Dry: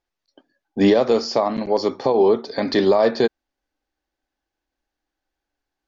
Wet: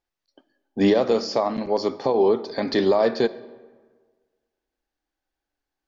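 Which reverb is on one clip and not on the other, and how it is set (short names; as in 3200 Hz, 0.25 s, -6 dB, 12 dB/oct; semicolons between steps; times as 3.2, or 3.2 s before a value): digital reverb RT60 1.5 s, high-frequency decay 0.6×, pre-delay 5 ms, DRR 16.5 dB; gain -3 dB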